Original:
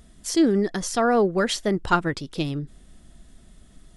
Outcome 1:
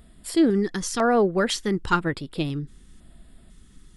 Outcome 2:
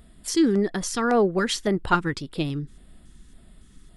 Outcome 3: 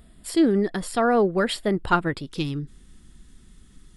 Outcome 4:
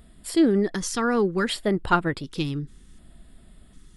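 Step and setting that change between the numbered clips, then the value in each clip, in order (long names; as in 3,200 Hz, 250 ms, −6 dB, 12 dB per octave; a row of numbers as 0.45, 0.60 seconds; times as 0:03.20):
auto-filter notch, speed: 1, 1.8, 0.22, 0.67 Hertz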